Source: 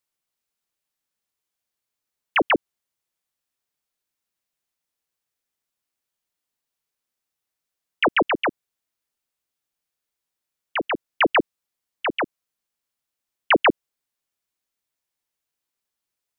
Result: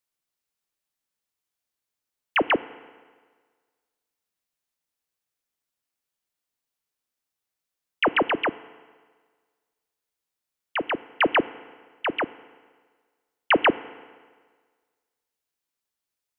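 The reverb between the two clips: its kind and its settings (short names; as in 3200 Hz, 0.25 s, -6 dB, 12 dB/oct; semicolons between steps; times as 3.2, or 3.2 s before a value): FDN reverb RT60 1.6 s, low-frequency decay 0.9×, high-frequency decay 0.9×, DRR 16.5 dB; gain -2 dB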